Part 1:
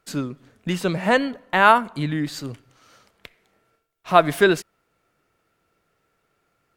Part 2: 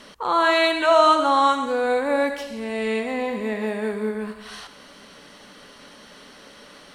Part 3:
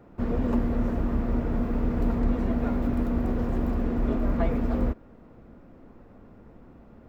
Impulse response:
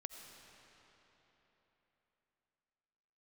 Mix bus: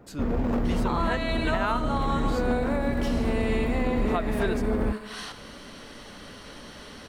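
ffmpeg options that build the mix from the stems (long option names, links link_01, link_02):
-filter_complex "[0:a]volume=-10dB[link_01];[1:a]acompressor=threshold=-26dB:ratio=6,adelay=650,volume=1dB[link_02];[2:a]aeval=exprs='0.1*(abs(mod(val(0)/0.1+3,4)-2)-1)':channel_layout=same,volume=1dB[link_03];[link_01][link_02][link_03]amix=inputs=3:normalize=0,alimiter=limit=-15.5dB:level=0:latency=1:release=366"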